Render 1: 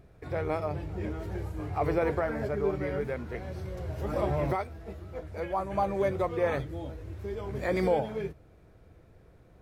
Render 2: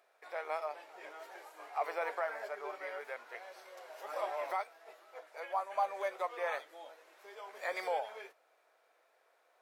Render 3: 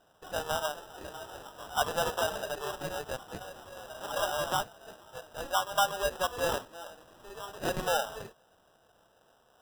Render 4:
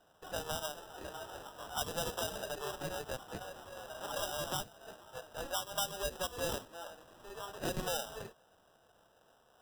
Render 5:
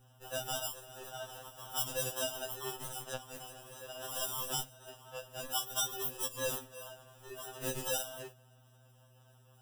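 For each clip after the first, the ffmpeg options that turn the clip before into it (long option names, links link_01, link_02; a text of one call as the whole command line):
ffmpeg -i in.wav -af "highpass=frequency=650:width=0.5412,highpass=frequency=650:width=1.3066,volume=-2.5dB" out.wav
ffmpeg -i in.wav -af "acrusher=samples=20:mix=1:aa=0.000001,volume=6dB" out.wav
ffmpeg -i in.wav -filter_complex "[0:a]acrossover=split=400|3000[link_01][link_02][link_03];[link_02]acompressor=threshold=-37dB:ratio=6[link_04];[link_01][link_04][link_03]amix=inputs=3:normalize=0,volume=-2dB" out.wav
ffmpeg -i in.wav -af "aeval=exprs='val(0)+0.00126*(sin(2*PI*60*n/s)+sin(2*PI*2*60*n/s)/2+sin(2*PI*3*60*n/s)/3+sin(2*PI*4*60*n/s)/4+sin(2*PI*5*60*n/s)/5)':channel_layout=same,aexciter=amount=1.5:drive=4.8:freq=2300,afftfilt=real='re*2.45*eq(mod(b,6),0)':imag='im*2.45*eq(mod(b,6),0)':win_size=2048:overlap=0.75" out.wav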